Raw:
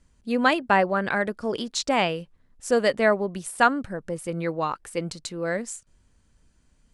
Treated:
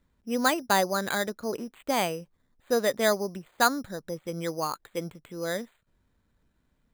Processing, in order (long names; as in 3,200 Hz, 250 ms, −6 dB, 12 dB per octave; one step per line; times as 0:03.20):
low-shelf EQ 81 Hz −8.5 dB
bad sample-rate conversion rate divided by 8×, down filtered, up hold
level −3.5 dB